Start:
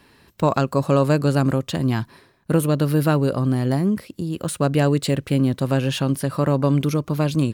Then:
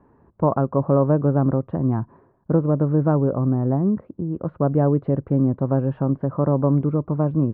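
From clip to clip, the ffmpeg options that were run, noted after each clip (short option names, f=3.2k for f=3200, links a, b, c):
-af "lowpass=f=1.1k:w=0.5412,lowpass=f=1.1k:w=1.3066"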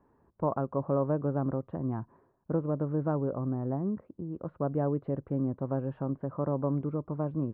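-af "equalizer=f=130:t=o:w=2.3:g=-3.5,volume=-9dB"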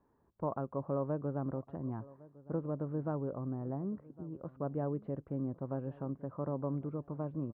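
-filter_complex "[0:a]asplit=2[a][b];[b]adelay=1108,lowpass=f=1.4k:p=1,volume=-20dB,asplit=2[c][d];[d]adelay=1108,lowpass=f=1.4k:p=1,volume=0.3[e];[a][c][e]amix=inputs=3:normalize=0,volume=-6.5dB"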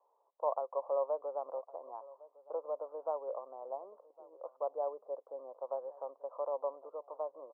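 -af "asuperpass=centerf=740:order=8:qfactor=1.2,volume=5dB"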